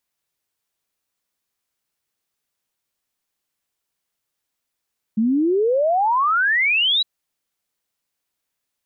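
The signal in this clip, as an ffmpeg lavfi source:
-f lavfi -i "aevalsrc='0.178*clip(min(t,1.86-t)/0.01,0,1)*sin(2*PI*210*1.86/log(4000/210)*(exp(log(4000/210)*t/1.86)-1))':d=1.86:s=44100"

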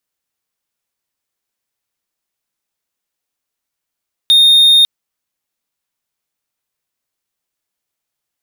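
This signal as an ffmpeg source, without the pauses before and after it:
-f lavfi -i "aevalsrc='0.708*(1-4*abs(mod(3680*t+0.25,1)-0.5))':d=0.55:s=44100"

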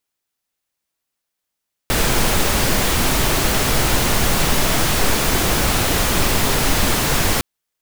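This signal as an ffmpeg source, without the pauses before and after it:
-f lavfi -i "anoisesrc=c=pink:a=0.767:d=5.51:r=44100:seed=1"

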